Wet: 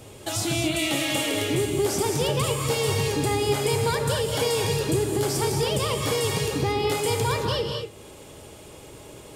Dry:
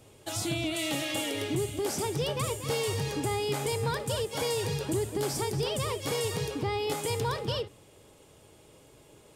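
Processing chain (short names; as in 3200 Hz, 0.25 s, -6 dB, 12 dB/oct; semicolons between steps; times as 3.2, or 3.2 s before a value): non-linear reverb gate 0.25 s rising, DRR 3.5 dB; in parallel at +2 dB: compressor, threshold -45 dBFS, peak gain reduction 20 dB; on the sum: gain +3.5 dB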